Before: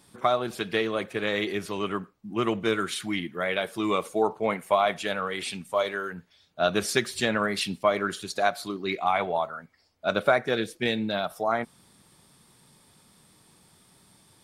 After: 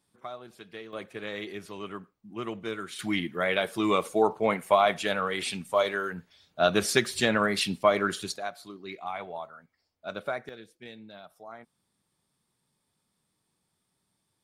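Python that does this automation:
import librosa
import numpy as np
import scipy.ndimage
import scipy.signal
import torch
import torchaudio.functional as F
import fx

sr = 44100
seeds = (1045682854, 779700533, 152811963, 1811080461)

y = fx.gain(x, sr, db=fx.steps((0.0, -16.5), (0.93, -9.0), (2.99, 1.0), (8.36, -11.0), (10.49, -19.0)))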